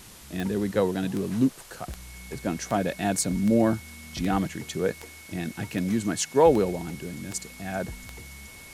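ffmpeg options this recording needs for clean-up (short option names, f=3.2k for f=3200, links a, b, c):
-af "adeclick=t=4,bandreject=f=2.2k:w=30,afwtdn=0.0045"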